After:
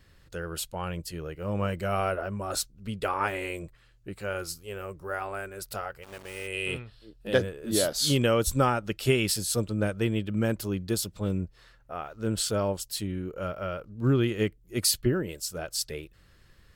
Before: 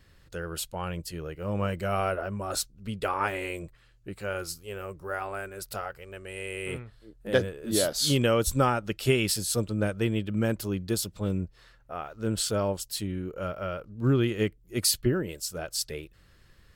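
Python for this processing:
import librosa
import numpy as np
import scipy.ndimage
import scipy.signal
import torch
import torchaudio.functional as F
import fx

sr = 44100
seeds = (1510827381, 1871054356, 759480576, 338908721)

y = fx.sample_gate(x, sr, floor_db=-42.0, at=(6.02, 6.46), fade=0.02)
y = fx.spec_box(y, sr, start_s=6.53, length_s=0.8, low_hz=2400.0, high_hz=5700.0, gain_db=8)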